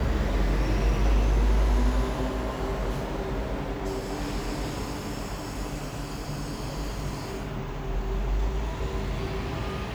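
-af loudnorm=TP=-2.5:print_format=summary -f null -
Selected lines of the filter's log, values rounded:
Input Integrated:    -30.4 LUFS
Input True Peak:     -13.2 dBTP
Input LRA:             6.6 LU
Input Threshold:     -40.4 LUFS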